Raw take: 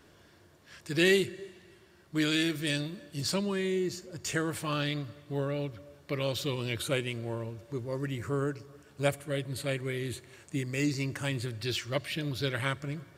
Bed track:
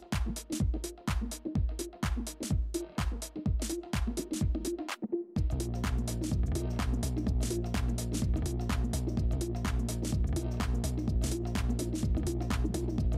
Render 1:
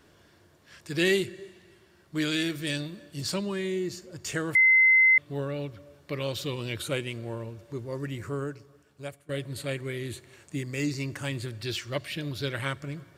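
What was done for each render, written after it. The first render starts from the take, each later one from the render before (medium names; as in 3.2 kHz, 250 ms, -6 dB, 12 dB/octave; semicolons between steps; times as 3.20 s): 4.55–5.18 s: bleep 2.06 kHz -15.5 dBFS; 8.16–9.29 s: fade out, to -18 dB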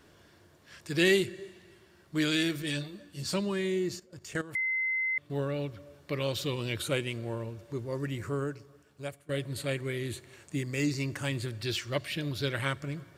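2.62–3.33 s: three-phase chorus; 3.97–5.30 s: level held to a coarse grid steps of 15 dB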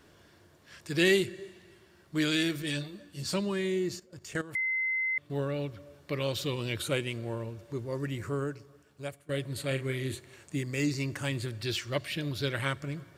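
9.67–10.15 s: doubling 38 ms -7.5 dB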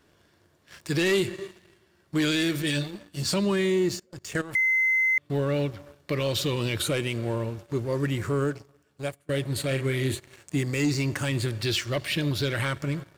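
waveshaping leveller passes 2; peak limiter -17.5 dBFS, peak gain reduction 6 dB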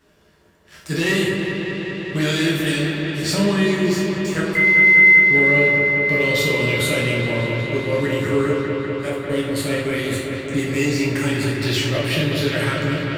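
feedback echo behind a low-pass 198 ms, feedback 84%, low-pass 3.1 kHz, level -5.5 dB; plate-style reverb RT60 0.56 s, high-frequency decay 0.9×, DRR -4 dB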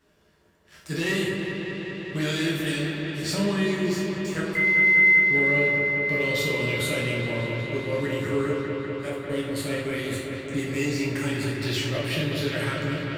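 trim -6.5 dB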